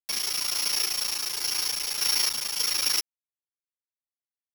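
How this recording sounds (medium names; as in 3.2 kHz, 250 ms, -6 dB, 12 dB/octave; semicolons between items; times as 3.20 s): a buzz of ramps at a fixed pitch in blocks of 8 samples; random-step tremolo; a quantiser's noise floor 6-bit, dither none; a shimmering, thickened sound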